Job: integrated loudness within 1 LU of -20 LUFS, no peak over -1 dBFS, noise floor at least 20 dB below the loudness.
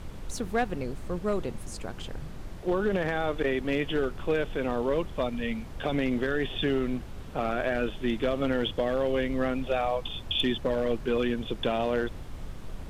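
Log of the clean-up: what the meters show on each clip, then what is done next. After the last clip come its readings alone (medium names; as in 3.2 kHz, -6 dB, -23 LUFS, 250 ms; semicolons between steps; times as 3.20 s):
clipped samples 0.4%; clipping level -18.5 dBFS; noise floor -41 dBFS; noise floor target -50 dBFS; loudness -29.5 LUFS; peak level -18.5 dBFS; loudness target -20.0 LUFS
-> clip repair -18.5 dBFS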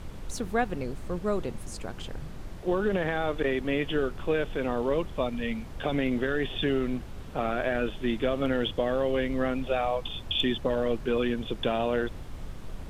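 clipped samples 0.0%; noise floor -41 dBFS; noise floor target -50 dBFS
-> noise print and reduce 9 dB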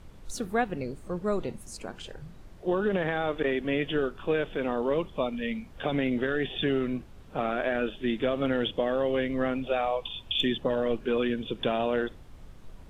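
noise floor -48 dBFS; noise floor target -50 dBFS
-> noise print and reduce 6 dB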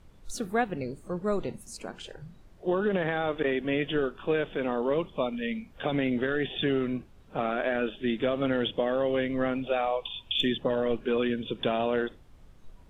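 noise floor -54 dBFS; loudness -29.5 LUFS; peak level -13.5 dBFS; loudness target -20.0 LUFS
-> trim +9.5 dB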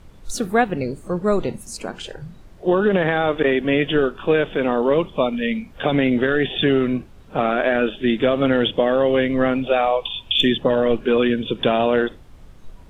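loudness -20.0 LUFS; peak level -4.0 dBFS; noise floor -44 dBFS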